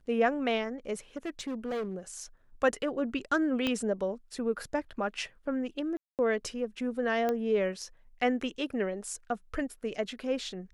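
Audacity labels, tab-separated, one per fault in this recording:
1.160000	2.200000	clipped -30.5 dBFS
3.670000	3.670000	pop -16 dBFS
5.970000	6.190000	gap 0.218 s
7.290000	7.290000	pop -18 dBFS

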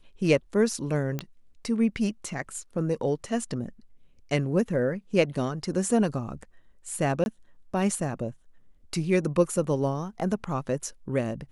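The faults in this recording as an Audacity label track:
1.190000	1.190000	pop -16 dBFS
7.240000	7.260000	gap 21 ms

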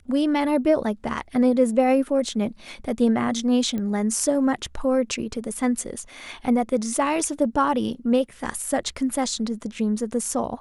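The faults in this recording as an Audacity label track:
3.780000	3.780000	pop -18 dBFS

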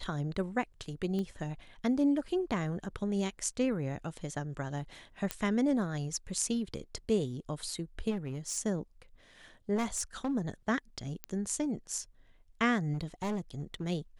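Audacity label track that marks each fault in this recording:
1.190000	1.190000	pop -25 dBFS
5.310000	5.310000	pop -15 dBFS
8.100000	8.580000	clipped -31.5 dBFS
9.750000	10.320000	clipped -28 dBFS
11.240000	11.240000	pop -20 dBFS
12.930000	13.840000	clipped -30.5 dBFS

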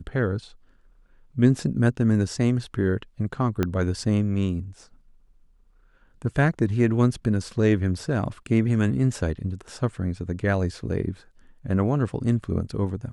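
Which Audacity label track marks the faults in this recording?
3.630000	3.630000	pop -10 dBFS

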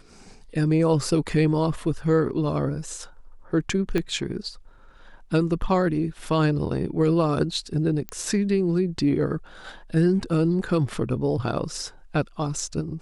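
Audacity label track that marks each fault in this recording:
3.980000	3.980000	pop -13 dBFS
8.090000	8.090000	pop -17 dBFS

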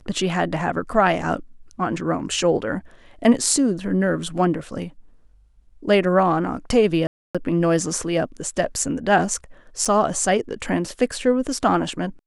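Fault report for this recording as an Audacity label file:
7.070000	7.350000	gap 0.276 s
9.850000	9.860000	gap 5.3 ms

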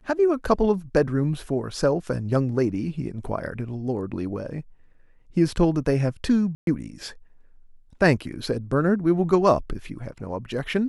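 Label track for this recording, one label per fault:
6.550000	6.670000	gap 0.122 s

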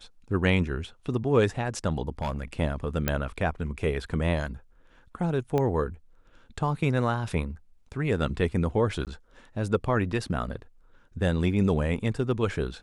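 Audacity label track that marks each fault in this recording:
2.220000	2.530000	clipped -25 dBFS
3.080000	3.080000	pop -9 dBFS
5.580000	5.580000	pop -15 dBFS
9.050000	9.070000	gap 18 ms

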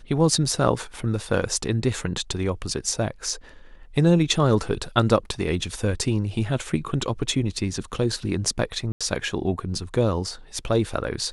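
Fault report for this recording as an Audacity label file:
8.920000	9.010000	gap 86 ms

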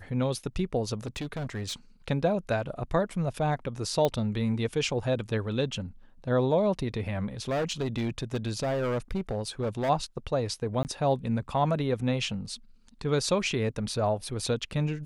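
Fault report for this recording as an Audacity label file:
0.980000	1.740000	clipped -30 dBFS
4.050000	4.050000	pop -13 dBFS
7.480000	9.900000	clipped -25 dBFS
10.830000	10.850000	gap 19 ms

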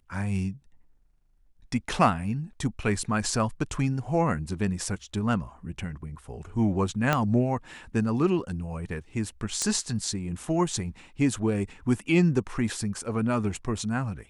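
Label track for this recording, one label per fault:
7.130000	7.130000	pop -9 dBFS
9.620000	9.620000	pop -13 dBFS

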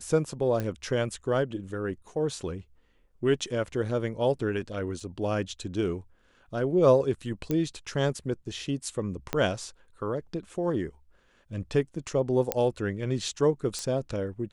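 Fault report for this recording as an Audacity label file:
0.600000	0.600000	pop -18 dBFS
5.000000	5.000000	gap 3.7 ms
7.510000	7.510000	pop -16 dBFS
9.330000	9.330000	pop -13 dBFS
12.520000	12.520000	pop -9 dBFS
13.790000	13.790000	pop -19 dBFS

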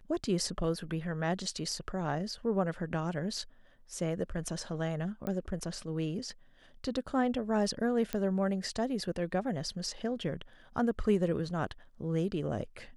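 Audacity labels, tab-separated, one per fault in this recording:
5.270000	5.270000	pop -23 dBFS
8.130000	8.130000	pop -17 dBFS

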